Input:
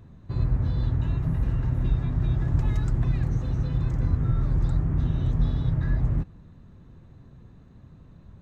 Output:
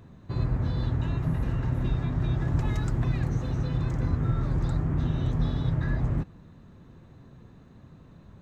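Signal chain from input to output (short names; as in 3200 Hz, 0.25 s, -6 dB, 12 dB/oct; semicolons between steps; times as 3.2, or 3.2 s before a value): low shelf 120 Hz -10 dB; gain +3.5 dB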